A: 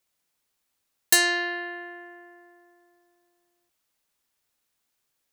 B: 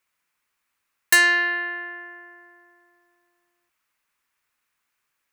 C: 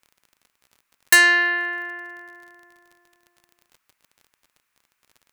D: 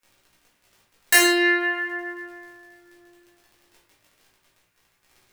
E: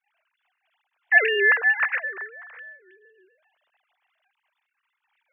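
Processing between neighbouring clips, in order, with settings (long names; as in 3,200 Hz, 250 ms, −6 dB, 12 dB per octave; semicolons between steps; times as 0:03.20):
flat-topped bell 1,600 Hz +9.5 dB; level −2 dB
surface crackle 41 per second −41 dBFS; level +2.5 dB
chorus effect 0.39 Hz, delay 16 ms, depth 3.8 ms; rectangular room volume 110 cubic metres, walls mixed, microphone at 1.8 metres; level −1 dB
three sine waves on the formant tracks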